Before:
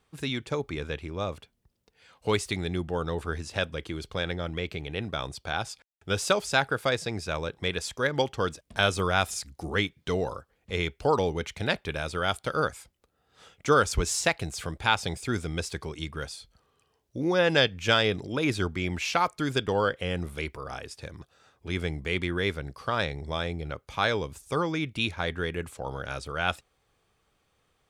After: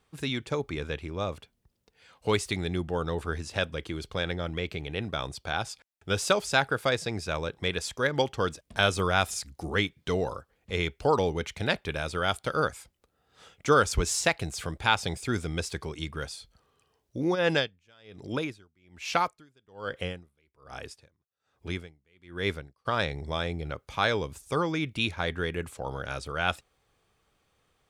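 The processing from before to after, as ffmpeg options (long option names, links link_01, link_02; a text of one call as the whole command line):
ffmpeg -i in.wav -filter_complex "[0:a]asplit=3[link_01][link_02][link_03];[link_01]afade=type=out:start_time=17.34:duration=0.02[link_04];[link_02]aeval=exprs='val(0)*pow(10,-37*(0.5-0.5*cos(2*PI*1.2*n/s))/20)':channel_layout=same,afade=type=in:start_time=17.34:duration=0.02,afade=type=out:start_time=22.85:duration=0.02[link_05];[link_03]afade=type=in:start_time=22.85:duration=0.02[link_06];[link_04][link_05][link_06]amix=inputs=3:normalize=0" out.wav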